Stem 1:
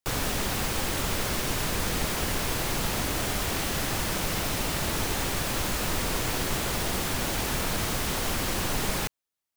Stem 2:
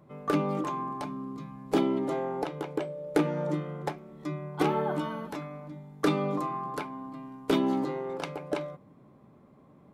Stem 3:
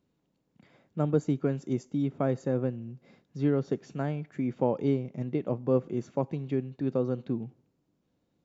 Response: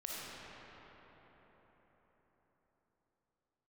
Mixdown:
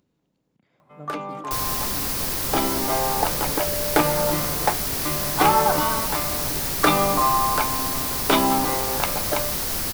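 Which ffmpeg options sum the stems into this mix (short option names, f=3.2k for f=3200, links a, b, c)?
-filter_complex "[0:a]aexciter=amount=2.7:drive=2:freq=4.3k,adelay=1450,volume=-2dB[a];[1:a]lowshelf=f=560:t=q:w=1.5:g=-8,dynaudnorm=f=400:g=9:m=12.5dB,adelay=800,volume=0.5dB[b];[2:a]volume=-14dB[c];[a][b][c]amix=inputs=3:normalize=0,acompressor=mode=upward:threshold=-57dB:ratio=2.5"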